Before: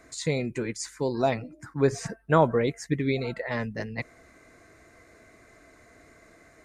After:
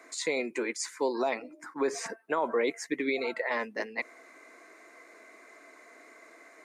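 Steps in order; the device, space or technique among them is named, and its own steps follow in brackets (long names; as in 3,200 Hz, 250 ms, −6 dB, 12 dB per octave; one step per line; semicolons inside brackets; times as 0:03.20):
high-pass filter 160 Hz 12 dB per octave
laptop speaker (high-pass filter 280 Hz 24 dB per octave; parametric band 1,000 Hz +6 dB 0.54 octaves; parametric band 2,200 Hz +5 dB 0.4 octaves; brickwall limiter −19 dBFS, peak gain reduction 13 dB)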